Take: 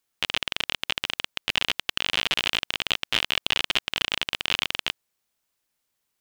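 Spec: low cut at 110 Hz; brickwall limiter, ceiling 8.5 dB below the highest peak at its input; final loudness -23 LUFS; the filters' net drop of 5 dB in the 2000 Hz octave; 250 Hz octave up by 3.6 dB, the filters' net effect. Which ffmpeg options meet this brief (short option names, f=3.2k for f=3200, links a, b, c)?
-af "highpass=110,equalizer=f=250:t=o:g=5,equalizer=f=2k:t=o:g=-7,volume=12.5dB,alimiter=limit=-2.5dB:level=0:latency=1"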